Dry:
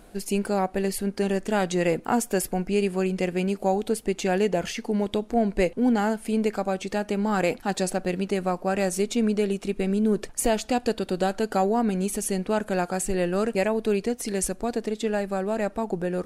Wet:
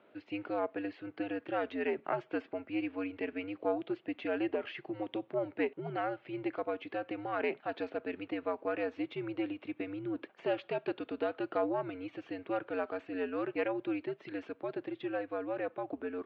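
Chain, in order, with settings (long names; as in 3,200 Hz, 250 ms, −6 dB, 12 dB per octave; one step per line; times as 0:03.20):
harmonic generator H 2 −13 dB, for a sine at −10 dBFS
single-sideband voice off tune −93 Hz 380–3,300 Hz
level −8 dB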